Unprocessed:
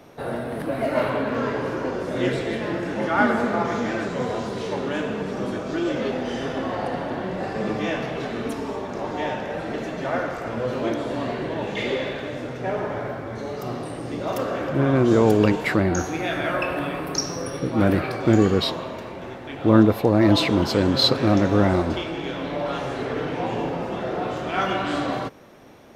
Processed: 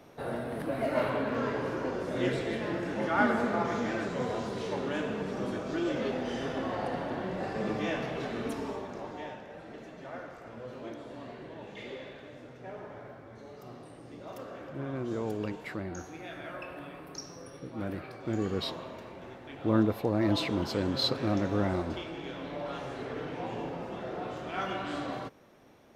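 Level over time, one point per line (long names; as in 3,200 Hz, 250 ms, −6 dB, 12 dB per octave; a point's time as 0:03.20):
0:08.66 −6.5 dB
0:09.45 −17 dB
0:18.21 −17 dB
0:18.67 −10.5 dB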